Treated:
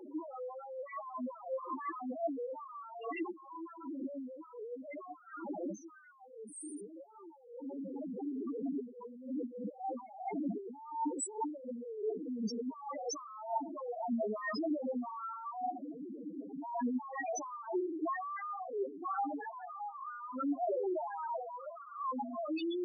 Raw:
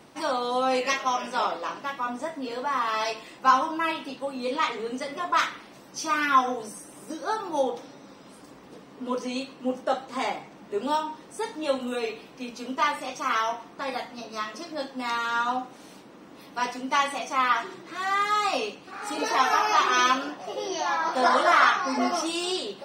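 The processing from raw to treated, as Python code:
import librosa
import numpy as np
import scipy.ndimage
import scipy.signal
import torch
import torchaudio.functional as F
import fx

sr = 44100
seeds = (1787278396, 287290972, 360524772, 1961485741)

y = fx.tracing_dist(x, sr, depth_ms=0.032)
y = fx.doppler_pass(y, sr, speed_mps=12, closest_m=14.0, pass_at_s=7.14)
y = fx.over_compress(y, sr, threshold_db=-56.0, ratio=-1.0)
y = scipy.signal.sosfilt(scipy.signal.butter(2, 220.0, 'highpass', fs=sr, output='sos'), y)
y = fx.high_shelf(y, sr, hz=11000.0, db=9.0)
y = y + 10.0 ** (-18.0 / 20.0) * np.pad(y, (int(136 * sr / 1000.0), 0))[:len(y)]
y = fx.spec_topn(y, sr, count=2)
y = F.gain(torch.from_numpy(y), 18.0).numpy()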